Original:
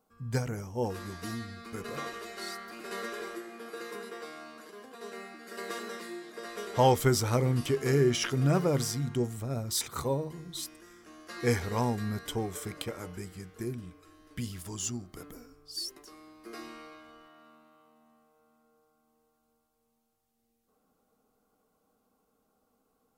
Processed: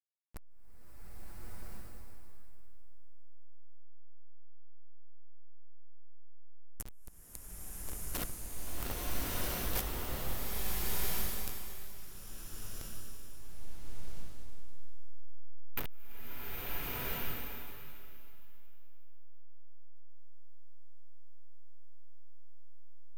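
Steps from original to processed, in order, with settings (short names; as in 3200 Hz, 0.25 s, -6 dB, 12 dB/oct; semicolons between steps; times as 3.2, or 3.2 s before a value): dynamic EQ 1200 Hz, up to +4 dB, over -51 dBFS, Q 3.1; LFO band-pass saw down 0.13 Hz 930–5900 Hz; sine folder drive 17 dB, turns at -20.5 dBFS; weighting filter ITU-R 468; hum 50 Hz, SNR 26 dB; inverse Chebyshev band-stop 150–5900 Hz, stop band 60 dB; backlash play -30 dBFS; bloom reverb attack 1.39 s, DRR -9 dB; gain +12.5 dB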